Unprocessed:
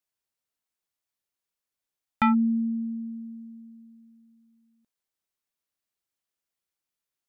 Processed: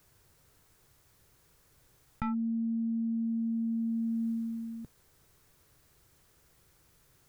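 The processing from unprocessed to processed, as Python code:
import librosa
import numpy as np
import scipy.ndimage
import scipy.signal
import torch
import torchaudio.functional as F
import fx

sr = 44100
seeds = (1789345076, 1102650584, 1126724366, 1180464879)

y = fx.tracing_dist(x, sr, depth_ms=0.022)
y = fx.curve_eq(y, sr, hz=(140.0, 220.0, 430.0, 650.0, 1500.0, 2800.0, 6200.0), db=(0, -13, -9, -16, -15, -21, -19))
y = fx.env_flatten(y, sr, amount_pct=100)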